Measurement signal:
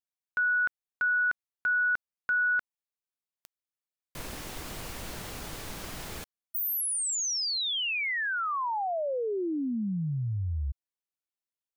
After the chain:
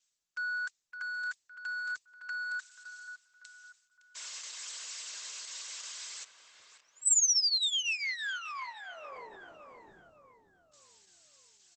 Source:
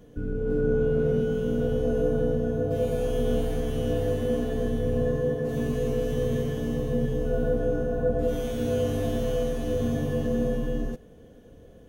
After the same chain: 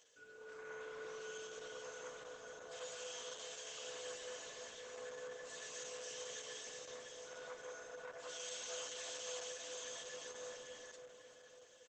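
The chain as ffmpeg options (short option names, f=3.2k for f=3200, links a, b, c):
-filter_complex "[0:a]asoftclip=type=tanh:threshold=-20dB,areverse,acompressor=mode=upward:threshold=-35dB:ratio=2.5:attack=0.9:release=293:knee=2.83:detection=peak,areverse,highpass=f=990:p=1,aderivative,acontrast=22,equalizer=f=1.3k:w=5.3:g=3,aecho=1:1:1.9:0.66,asplit=2[a][b];[b]adelay=562,lowpass=f=1.8k:p=1,volume=-7dB,asplit=2[c][d];[d]adelay=562,lowpass=f=1.8k:p=1,volume=0.52,asplit=2[e][f];[f]adelay=562,lowpass=f=1.8k:p=1,volume=0.52,asplit=2[g][h];[h]adelay=562,lowpass=f=1.8k:p=1,volume=0.52,asplit=2[i][j];[j]adelay=562,lowpass=f=1.8k:p=1,volume=0.52,asplit=2[k][l];[l]adelay=562,lowpass=f=1.8k:p=1,volume=0.52[m];[a][c][e][g][i][k][m]amix=inputs=7:normalize=0" -ar 48000 -c:a libopus -b:a 10k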